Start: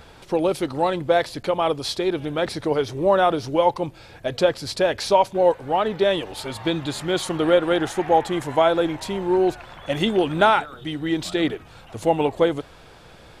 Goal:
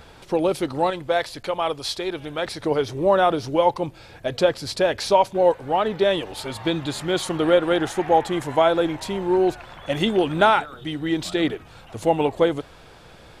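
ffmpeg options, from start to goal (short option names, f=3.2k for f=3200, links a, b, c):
-filter_complex "[0:a]asettb=1/sr,asplit=3[a][b][c];[a]atrim=end=0.904[d];[b]atrim=start=0.9:end=2.61,asetpts=PTS-STARTPTS,afade=t=in:d=0.004:c=qsin,afade=t=out:st=1.706:d=0.004:c=qsin,equalizer=f=210:w=0.44:g=-7[e];[c]atrim=start=2.606[f];[d][e]acrossfade=d=0.004:c1=hsin:c2=qsin[g];[g][f]acrossfade=d=0.004:c1=qsin:c2=hsin"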